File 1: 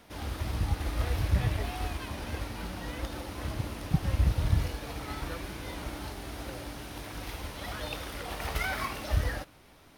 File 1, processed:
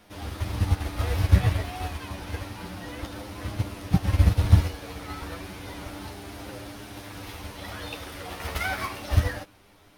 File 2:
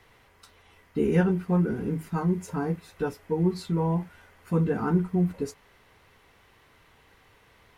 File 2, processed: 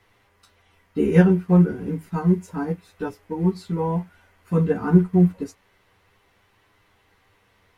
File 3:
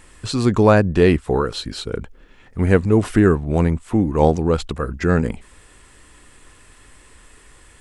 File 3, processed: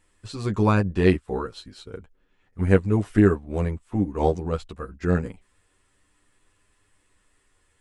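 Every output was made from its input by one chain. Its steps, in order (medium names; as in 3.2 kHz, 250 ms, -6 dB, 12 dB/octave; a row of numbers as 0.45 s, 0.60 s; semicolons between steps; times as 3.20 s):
flange 0.3 Hz, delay 9.8 ms, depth 1.1 ms, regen -1%; upward expansion 1.5:1, over -39 dBFS; peak normalisation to -3 dBFS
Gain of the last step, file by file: +12.0 dB, +10.0 dB, -1.0 dB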